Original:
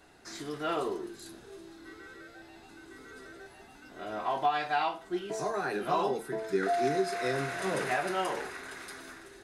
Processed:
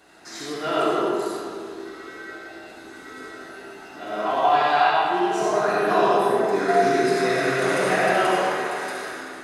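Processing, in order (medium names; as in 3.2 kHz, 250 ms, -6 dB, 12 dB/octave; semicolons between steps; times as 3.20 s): high-pass 190 Hz 6 dB/octave; reverberation RT60 2.4 s, pre-delay 25 ms, DRR -6 dB; trim +4.5 dB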